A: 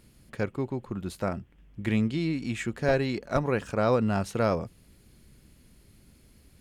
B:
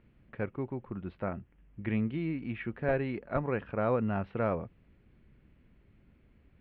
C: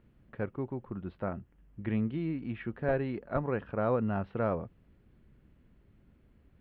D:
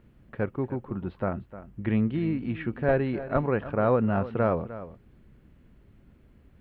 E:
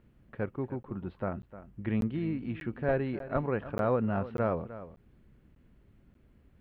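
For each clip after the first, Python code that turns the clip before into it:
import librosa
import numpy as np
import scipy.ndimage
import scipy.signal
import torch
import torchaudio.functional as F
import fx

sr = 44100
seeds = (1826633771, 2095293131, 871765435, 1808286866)

y1 = scipy.signal.sosfilt(scipy.signal.cheby2(4, 50, 6500.0, 'lowpass', fs=sr, output='sos'), x)
y1 = y1 * 10.0 ** (-5.0 / 20.0)
y2 = fx.peak_eq(y1, sr, hz=2300.0, db=-6.0, octaves=0.6)
y3 = y2 + 10.0 ** (-14.5 / 20.0) * np.pad(y2, (int(304 * sr / 1000.0), 0))[:len(y2)]
y3 = y3 * 10.0 ** (6.0 / 20.0)
y4 = fx.buffer_crackle(y3, sr, first_s=0.83, period_s=0.59, block=512, kind='zero')
y4 = y4 * 10.0 ** (-5.0 / 20.0)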